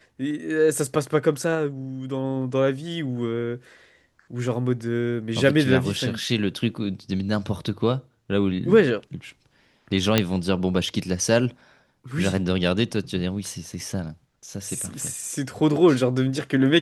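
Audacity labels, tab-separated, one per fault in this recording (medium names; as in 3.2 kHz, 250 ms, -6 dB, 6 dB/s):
10.180000	10.180000	pop -3 dBFS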